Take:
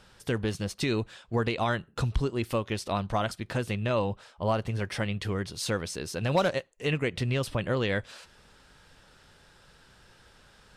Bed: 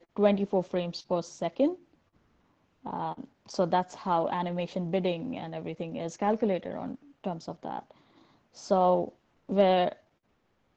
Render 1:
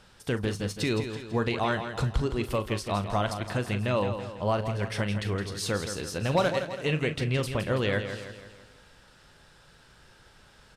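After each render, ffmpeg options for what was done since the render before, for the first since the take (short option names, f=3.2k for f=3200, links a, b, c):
-filter_complex "[0:a]asplit=2[a][b];[b]adelay=39,volume=-12.5dB[c];[a][c]amix=inputs=2:normalize=0,aecho=1:1:165|330|495|660|825|990:0.355|0.174|0.0852|0.0417|0.0205|0.01"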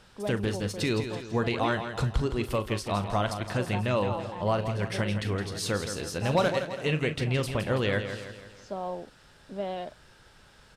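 -filter_complex "[1:a]volume=-11dB[a];[0:a][a]amix=inputs=2:normalize=0"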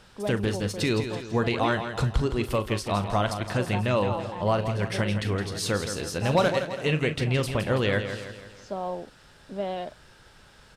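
-af "volume=2.5dB"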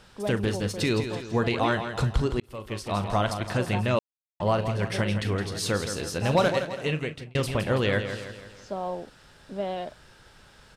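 -filter_complex "[0:a]asplit=5[a][b][c][d][e];[a]atrim=end=2.4,asetpts=PTS-STARTPTS,afade=t=out:st=2.396:d=0.004:c=hsin[f];[b]atrim=start=2.4:end=3.99,asetpts=PTS-STARTPTS,afade=t=in:d=0.67,afade=t=out:st=1.586:d=0.004:c=hsin[g];[c]atrim=start=3.99:end=4.4,asetpts=PTS-STARTPTS,volume=0[h];[d]atrim=start=4.4:end=7.35,asetpts=PTS-STARTPTS,afade=t=in:d=0.004:c=hsin,afade=t=out:st=2.09:d=0.86:c=qsin[i];[e]atrim=start=7.35,asetpts=PTS-STARTPTS,afade=t=in:d=0.004:c=hsin[j];[f][g][h][i][j]concat=n=5:v=0:a=1"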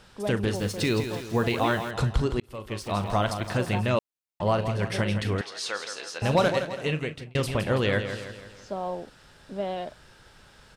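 -filter_complex "[0:a]asettb=1/sr,asplit=3[a][b][c];[a]atrim=end=0.554[d];[b]atrim=start=0.55:end=1.91,asetpts=PTS-STARTPTS,afade=t=in:d=0.004:c=qsin,afade=t=out:st=1.356:d=0.004:c=qsin,acrusher=bits=6:mix=0:aa=0.5[e];[c]atrim=start=1.906[f];[d][e]acrossfade=d=0.004:c1=hsin:c2=qsin[g];[g][f]acrossfade=d=0.004:c1=qsin:c2=hsin,asettb=1/sr,asplit=3[h][i][j];[h]atrim=end=2.804[k];[i]atrim=start=2.8:end=3.9,asetpts=PTS-STARTPTS,afade=t=in:d=0.004:c=qsin,afade=t=out:st=1.096:d=0.004:c=qsin,aeval=exprs='val(0)*gte(abs(val(0)),0.00398)':c=same[l];[j]atrim=start=3.896[m];[k][l]acrossfade=d=0.004:c1=hsin:c2=qsin[n];[n][m]acrossfade=d=0.004:c1=qsin:c2=hsin,asettb=1/sr,asplit=3[o][p][q];[o]atrim=end=5.414[r];[p]atrim=start=5.41:end=6.22,asetpts=PTS-STARTPTS,afade=t=in:d=0.004:c=qsin,afade=t=out:st=0.806:d=0.004:c=qsin,highpass=740,lowpass=6.4k[s];[q]atrim=start=6.216[t];[r][s]acrossfade=d=0.004:c1=hsin:c2=qsin[u];[u][t]acrossfade=d=0.004:c1=qsin:c2=hsin"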